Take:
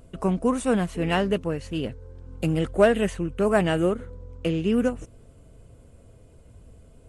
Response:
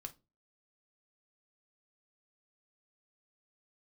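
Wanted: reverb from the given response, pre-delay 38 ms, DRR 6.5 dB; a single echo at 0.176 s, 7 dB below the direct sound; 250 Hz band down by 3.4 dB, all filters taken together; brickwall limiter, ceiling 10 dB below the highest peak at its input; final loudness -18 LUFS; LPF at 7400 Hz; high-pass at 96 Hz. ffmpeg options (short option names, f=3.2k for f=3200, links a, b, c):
-filter_complex "[0:a]highpass=96,lowpass=7.4k,equalizer=f=250:t=o:g=-4.5,alimiter=limit=-18dB:level=0:latency=1,aecho=1:1:176:0.447,asplit=2[a][b];[1:a]atrim=start_sample=2205,adelay=38[c];[b][c]afir=irnorm=-1:irlink=0,volume=-2dB[d];[a][d]amix=inputs=2:normalize=0,volume=9dB"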